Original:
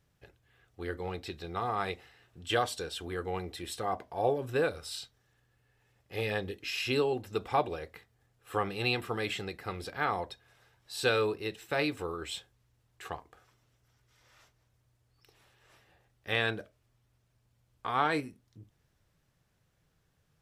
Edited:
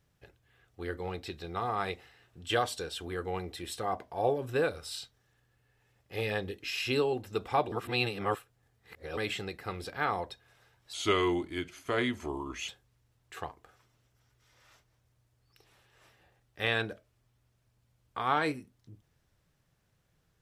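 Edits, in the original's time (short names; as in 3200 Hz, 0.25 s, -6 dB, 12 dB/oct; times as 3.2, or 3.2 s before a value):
7.72–9.17 reverse
10.93–12.37 speed 82%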